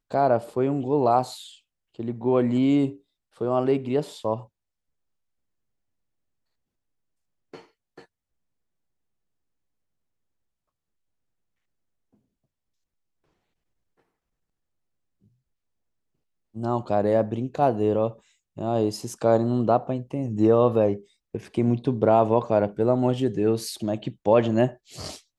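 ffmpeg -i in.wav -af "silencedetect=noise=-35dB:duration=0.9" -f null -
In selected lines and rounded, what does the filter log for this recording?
silence_start: 4.42
silence_end: 7.54 | silence_duration: 3.12
silence_start: 7.98
silence_end: 16.56 | silence_duration: 8.57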